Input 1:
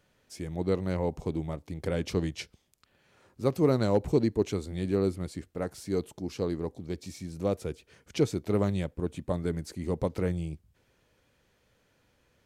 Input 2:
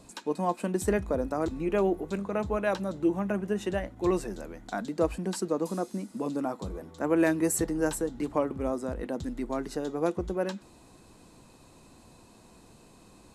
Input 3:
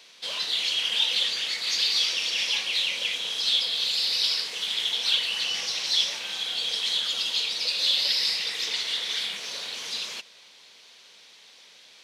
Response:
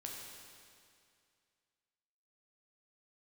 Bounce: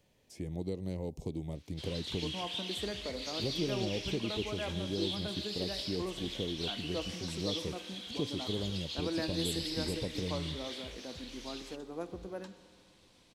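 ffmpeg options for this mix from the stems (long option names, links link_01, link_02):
-filter_complex "[0:a]equalizer=frequency=1400:width_type=o:width=0.52:gain=-14.5,acrossover=split=580|2700[link_01][link_02][link_03];[link_01]acompressor=threshold=-34dB:ratio=4[link_04];[link_02]acompressor=threshold=-57dB:ratio=4[link_05];[link_03]acompressor=threshold=-55dB:ratio=4[link_06];[link_04][link_05][link_06]amix=inputs=3:normalize=0,volume=-0.5dB[link_07];[1:a]adelay=1950,volume=-15dB,asplit=2[link_08][link_09];[link_09]volume=-3dB[link_10];[2:a]adelay=1550,volume=-15.5dB[link_11];[3:a]atrim=start_sample=2205[link_12];[link_10][link_12]afir=irnorm=-1:irlink=0[link_13];[link_07][link_08][link_11][link_13]amix=inputs=4:normalize=0"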